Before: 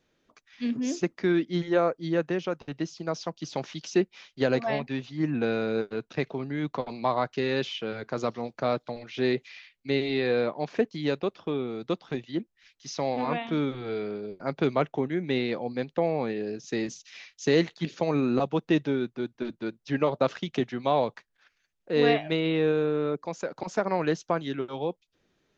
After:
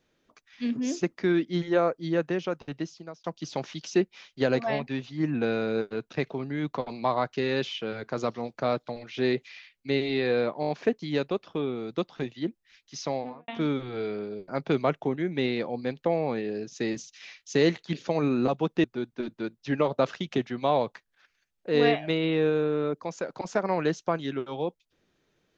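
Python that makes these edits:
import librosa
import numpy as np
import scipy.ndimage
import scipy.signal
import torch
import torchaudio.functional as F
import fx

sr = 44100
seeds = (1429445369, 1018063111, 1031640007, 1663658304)

y = fx.studio_fade_out(x, sr, start_s=12.94, length_s=0.46)
y = fx.edit(y, sr, fx.fade_out_span(start_s=2.73, length_s=0.51),
    fx.stutter(start_s=10.61, slice_s=0.02, count=5),
    fx.cut(start_s=18.76, length_s=0.3), tone=tone)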